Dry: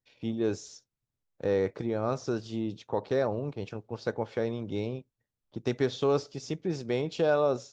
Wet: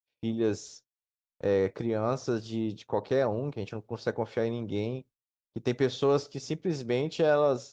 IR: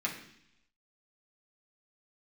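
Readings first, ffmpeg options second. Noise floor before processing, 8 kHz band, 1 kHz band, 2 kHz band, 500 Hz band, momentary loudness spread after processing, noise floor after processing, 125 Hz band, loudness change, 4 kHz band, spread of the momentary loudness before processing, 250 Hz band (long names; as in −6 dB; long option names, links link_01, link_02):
below −85 dBFS, can't be measured, +1.0 dB, +1.0 dB, +1.0 dB, 10 LU, below −85 dBFS, +1.0 dB, +1.0 dB, +1.0 dB, 10 LU, +1.0 dB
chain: -af "acontrast=89,agate=range=-33dB:threshold=-39dB:ratio=3:detection=peak,volume=-6dB"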